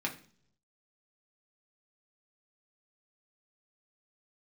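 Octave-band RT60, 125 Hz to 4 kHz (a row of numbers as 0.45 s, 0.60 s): 1.0 s, 0.75 s, 0.65 s, 0.45 s, 0.45 s, 0.50 s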